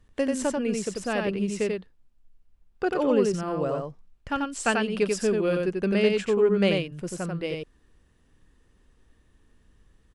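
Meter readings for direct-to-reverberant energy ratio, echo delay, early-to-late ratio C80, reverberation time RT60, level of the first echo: none, 90 ms, none, none, -3.5 dB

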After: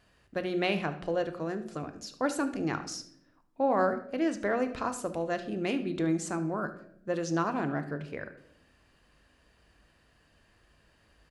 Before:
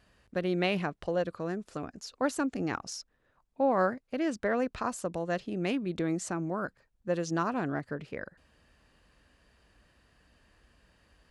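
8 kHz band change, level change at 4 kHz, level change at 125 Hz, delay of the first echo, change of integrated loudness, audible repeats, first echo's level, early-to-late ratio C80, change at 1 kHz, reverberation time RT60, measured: +0.5 dB, +0.5 dB, -0.5 dB, 74 ms, +0.5 dB, 1, -17.0 dB, 15.5 dB, +1.0 dB, 0.70 s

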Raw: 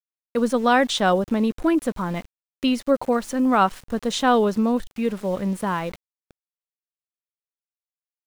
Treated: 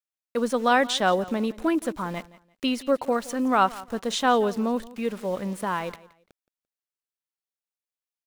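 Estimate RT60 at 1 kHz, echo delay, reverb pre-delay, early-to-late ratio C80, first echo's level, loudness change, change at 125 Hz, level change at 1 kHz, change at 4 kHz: none, 0.171 s, none, none, -19.5 dB, -3.5 dB, -6.5 dB, -2.0 dB, -1.5 dB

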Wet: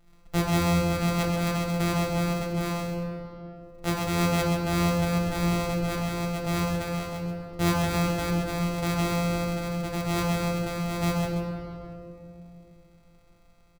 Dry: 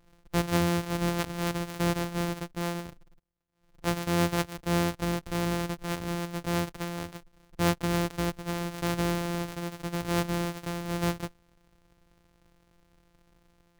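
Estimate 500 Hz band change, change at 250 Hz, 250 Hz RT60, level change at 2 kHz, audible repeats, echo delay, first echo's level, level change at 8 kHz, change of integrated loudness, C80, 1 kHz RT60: +3.0 dB, +3.5 dB, 3.7 s, +2.5 dB, 1, 0.132 s, -6.0 dB, +2.0 dB, +3.0 dB, 1.5 dB, 2.3 s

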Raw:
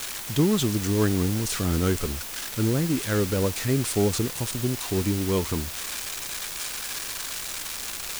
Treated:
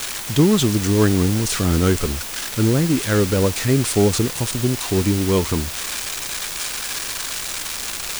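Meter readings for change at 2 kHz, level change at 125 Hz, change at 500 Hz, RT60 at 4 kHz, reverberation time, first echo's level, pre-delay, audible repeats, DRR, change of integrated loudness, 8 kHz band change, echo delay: +6.5 dB, +6.5 dB, +6.5 dB, none, none, none, none, none, none, +6.5 dB, +6.0 dB, none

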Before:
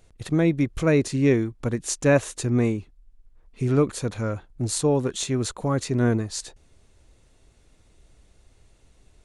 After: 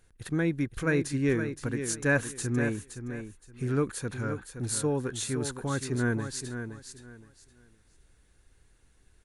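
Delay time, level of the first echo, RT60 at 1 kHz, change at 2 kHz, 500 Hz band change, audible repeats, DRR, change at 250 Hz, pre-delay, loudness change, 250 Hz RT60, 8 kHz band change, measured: 0.519 s, -9.0 dB, none, +0.5 dB, -7.5 dB, 3, none, -6.5 dB, none, -6.5 dB, none, -3.5 dB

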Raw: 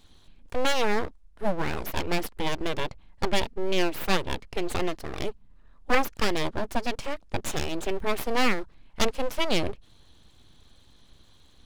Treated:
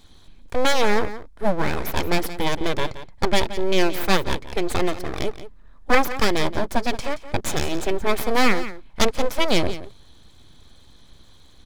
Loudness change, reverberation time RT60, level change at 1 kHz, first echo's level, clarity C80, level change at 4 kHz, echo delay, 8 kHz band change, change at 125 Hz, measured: +5.5 dB, none, +5.5 dB, -13.5 dB, none, +5.0 dB, 0.174 s, +5.5 dB, +5.5 dB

